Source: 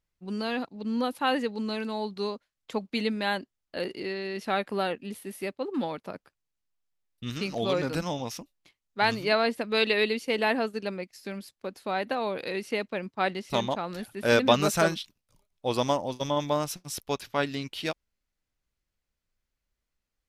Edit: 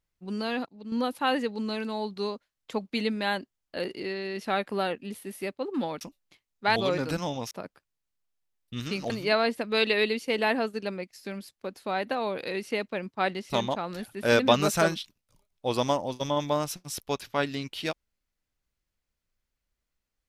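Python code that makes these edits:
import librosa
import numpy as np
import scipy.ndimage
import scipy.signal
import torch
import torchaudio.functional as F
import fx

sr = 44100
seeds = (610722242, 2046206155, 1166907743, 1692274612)

y = fx.edit(x, sr, fx.clip_gain(start_s=0.66, length_s=0.26, db=-7.5),
    fx.swap(start_s=6.01, length_s=1.59, other_s=8.35, other_length_s=0.75), tone=tone)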